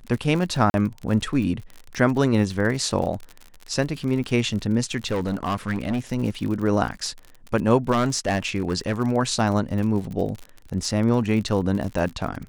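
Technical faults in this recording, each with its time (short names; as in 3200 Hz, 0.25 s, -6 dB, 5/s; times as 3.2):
crackle 50/s -29 dBFS
0.7–0.74 gap 41 ms
4.97–6 clipped -20 dBFS
7.91–9 clipped -16.5 dBFS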